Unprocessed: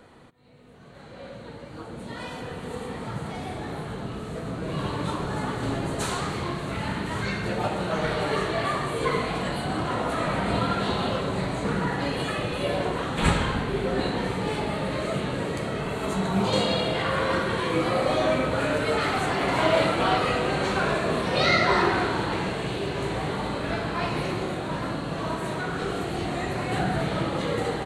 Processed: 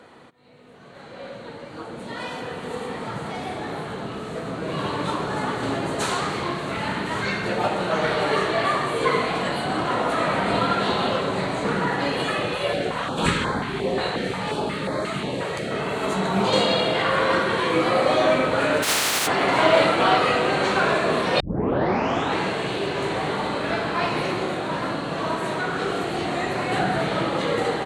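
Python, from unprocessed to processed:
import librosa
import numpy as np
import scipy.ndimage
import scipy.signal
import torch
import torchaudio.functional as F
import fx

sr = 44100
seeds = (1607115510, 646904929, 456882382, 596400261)

y = fx.filter_held_notch(x, sr, hz=5.6, low_hz=260.0, high_hz=2800.0, at=(12.55, 15.71))
y = fx.spec_flatten(y, sr, power=0.14, at=(18.82, 19.26), fade=0.02)
y = fx.edit(y, sr, fx.tape_start(start_s=21.4, length_s=0.98), tone=tone)
y = fx.highpass(y, sr, hz=280.0, slope=6)
y = fx.high_shelf(y, sr, hz=10000.0, db=-9.5)
y = F.gain(torch.from_numpy(y), 5.5).numpy()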